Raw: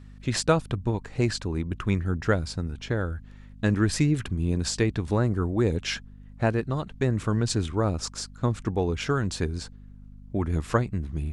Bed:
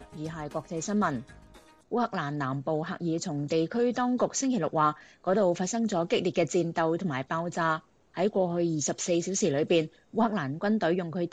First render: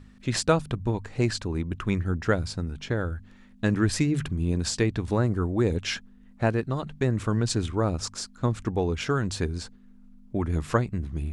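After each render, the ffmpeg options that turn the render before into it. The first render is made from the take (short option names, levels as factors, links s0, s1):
-af "bandreject=f=50:t=h:w=4,bandreject=f=100:t=h:w=4,bandreject=f=150:t=h:w=4"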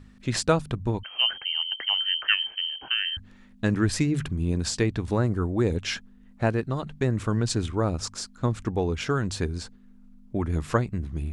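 -filter_complex "[0:a]asettb=1/sr,asplit=3[s0][s1][s2];[s0]atrim=end=1.034[s3];[s1]atrim=start=1.03:end=3.17,asetpts=PTS-STARTPTS,afade=t=in:d=0.004:c=qsin,afade=t=out:st=2.136:d=0.004:c=qsin,lowpass=f=2700:t=q:w=0.5098,lowpass=f=2700:t=q:w=0.6013,lowpass=f=2700:t=q:w=0.9,lowpass=f=2700:t=q:w=2.563,afreqshift=-3200[s4];[s2]atrim=start=3.166[s5];[s3][s4]acrossfade=d=0.004:c1=hsin:c2=qsin[s6];[s6][s5]acrossfade=d=0.004:c1=qsin:c2=hsin"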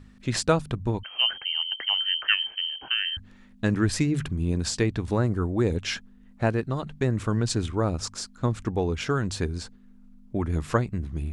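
-af anull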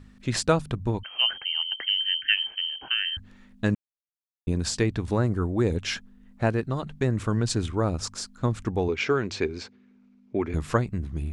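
-filter_complex "[0:a]asettb=1/sr,asplit=3[s0][s1][s2];[s0]atrim=end=1.874[s3];[s1]atrim=start=1.87:end=2.37,asetpts=PTS-STARTPTS,afade=t=in:d=0.004:c=qsin,afade=t=out:st=0.496:d=0.004:c=qsin,asuperstop=centerf=690:order=20:qfactor=0.54[s4];[s2]atrim=start=2.366[s5];[s3][s4]acrossfade=d=0.004:c1=hsin:c2=qsin[s6];[s6][s5]acrossfade=d=0.004:c1=qsin:c2=hsin,asettb=1/sr,asplit=3[s7][s8][s9];[s7]atrim=end=8.884[s10];[s8]atrim=start=8.88:end=10.54,asetpts=PTS-STARTPTS,afade=t=in:d=0.004:c=qsin,afade=t=out:st=1.656:d=0.004:c=qsin,highpass=140,equalizer=f=170:t=q:w=4:g=-7,equalizer=f=390:t=q:w=4:g=7,equalizer=f=2300:t=q:w=4:g=10,lowpass=f=6200:w=0.5412,lowpass=f=6200:w=1.3066[s11];[s9]atrim=start=10.536[s12];[s10][s11]acrossfade=d=0.004:c1=hsin:c2=qsin[s13];[s13][s12]acrossfade=d=0.004:c1=qsin:c2=hsin,asplit=3[s14][s15][s16];[s14]atrim=end=3.75,asetpts=PTS-STARTPTS,afade=t=out:st=3.746:d=0.004:c=hsin[s17];[s15]atrim=start=3.75:end=4.47,asetpts=PTS-STARTPTS,volume=0[s18];[s16]atrim=start=4.47,asetpts=PTS-STARTPTS,afade=t=in:d=0.004:c=hsin[s19];[s17][s18][s19]concat=n=3:v=0:a=1"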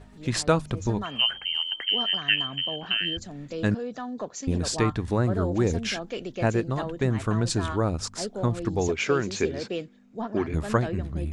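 -filter_complex "[1:a]volume=0.422[s0];[0:a][s0]amix=inputs=2:normalize=0"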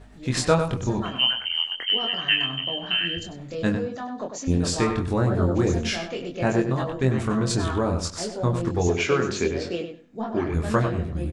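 -filter_complex "[0:a]asplit=2[s0][s1];[s1]adelay=23,volume=0.668[s2];[s0][s2]amix=inputs=2:normalize=0,asplit=2[s3][s4];[s4]adelay=98,lowpass=f=3400:p=1,volume=0.447,asplit=2[s5][s6];[s6]adelay=98,lowpass=f=3400:p=1,volume=0.21,asplit=2[s7][s8];[s8]adelay=98,lowpass=f=3400:p=1,volume=0.21[s9];[s3][s5][s7][s9]amix=inputs=4:normalize=0"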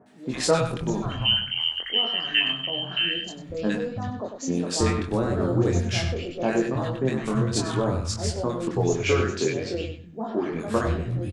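-filter_complex "[0:a]acrossover=split=160|1300[s0][s1][s2];[s2]adelay=60[s3];[s0]adelay=330[s4];[s4][s1][s3]amix=inputs=3:normalize=0"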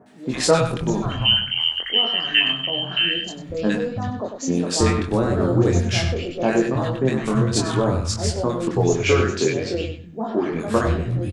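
-af "volume=1.68"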